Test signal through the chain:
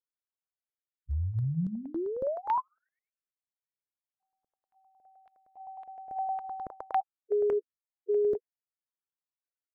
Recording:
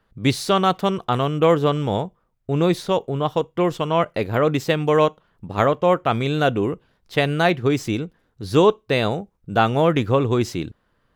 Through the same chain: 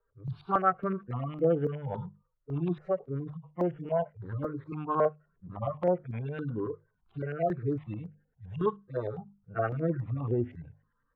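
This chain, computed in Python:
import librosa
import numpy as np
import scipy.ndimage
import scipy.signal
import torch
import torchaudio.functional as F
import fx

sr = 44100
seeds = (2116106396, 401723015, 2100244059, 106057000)

y = fx.hpss_only(x, sr, part='harmonic')
y = fx.hum_notches(y, sr, base_hz=50, count=5)
y = fx.dynamic_eq(y, sr, hz=1600.0, q=2.7, threshold_db=-43.0, ratio=4.0, max_db=4)
y = fx.filter_lfo_lowpass(y, sr, shape='saw_up', hz=9.7, low_hz=750.0, high_hz=2200.0, q=1.8)
y = fx.phaser_held(y, sr, hz=3.6, low_hz=760.0, high_hz=3900.0)
y = y * 10.0 ** (-7.5 / 20.0)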